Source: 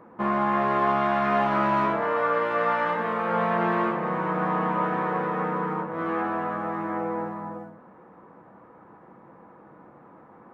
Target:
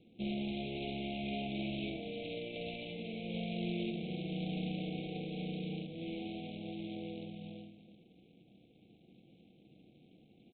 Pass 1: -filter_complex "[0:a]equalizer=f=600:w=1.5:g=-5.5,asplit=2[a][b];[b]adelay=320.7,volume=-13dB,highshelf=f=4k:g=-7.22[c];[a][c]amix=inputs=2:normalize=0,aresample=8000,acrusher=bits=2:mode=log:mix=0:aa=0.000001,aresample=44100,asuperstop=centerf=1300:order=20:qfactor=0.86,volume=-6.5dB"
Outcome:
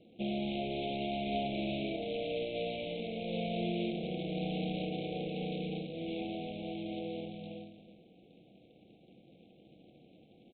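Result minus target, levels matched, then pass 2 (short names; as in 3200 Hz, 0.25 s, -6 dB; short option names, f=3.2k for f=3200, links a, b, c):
500 Hz band +3.5 dB
-filter_complex "[0:a]equalizer=f=600:w=1.5:g=-16.5,asplit=2[a][b];[b]adelay=320.7,volume=-13dB,highshelf=f=4k:g=-7.22[c];[a][c]amix=inputs=2:normalize=0,aresample=8000,acrusher=bits=2:mode=log:mix=0:aa=0.000001,aresample=44100,asuperstop=centerf=1300:order=20:qfactor=0.86,volume=-6.5dB"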